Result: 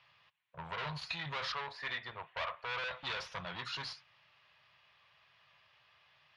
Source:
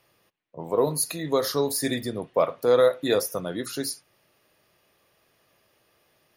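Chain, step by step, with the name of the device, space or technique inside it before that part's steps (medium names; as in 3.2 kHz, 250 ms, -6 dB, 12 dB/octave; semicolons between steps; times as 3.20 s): 1.52–2.84 s: three-band isolator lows -16 dB, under 380 Hz, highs -19 dB, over 2.8 kHz; scooped metal amplifier (valve stage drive 33 dB, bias 0.45; cabinet simulation 80–3700 Hz, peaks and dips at 140 Hz +5 dB, 480 Hz -5 dB, 990 Hz +6 dB; amplifier tone stack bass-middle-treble 10-0-10); trim +8.5 dB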